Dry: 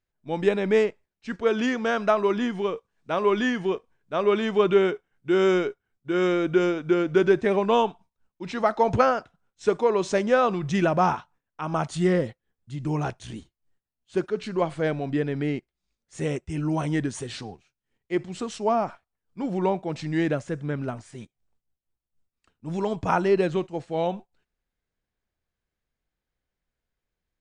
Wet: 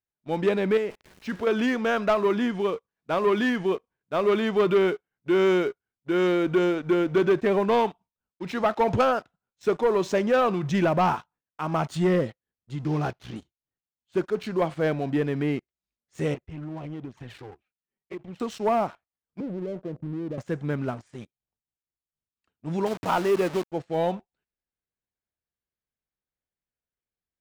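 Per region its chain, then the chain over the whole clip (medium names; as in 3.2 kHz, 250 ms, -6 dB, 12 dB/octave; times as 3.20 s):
0.77–1.47 s: jump at every zero crossing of -38.5 dBFS + compression 5:1, threshold -25 dBFS
12.85–13.36 s: CVSD coder 32 kbps + treble shelf 4.6 kHz -4.5 dB + band-stop 940 Hz, Q 14
16.34–18.40 s: low-pass 2.7 kHz + touch-sensitive flanger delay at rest 5.5 ms, full sweep at -22.5 dBFS + compression, threshold -34 dBFS
19.40–20.38 s: steep low-pass 630 Hz 72 dB/octave + compression 8:1, threshold -30 dBFS
22.86–23.72 s: send-on-delta sampling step -30 dBFS + bass shelf 130 Hz -11.5 dB
whole clip: high-pass 69 Hz 6 dB/octave; treble shelf 8 kHz -11 dB; waveshaping leveller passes 2; trim -6 dB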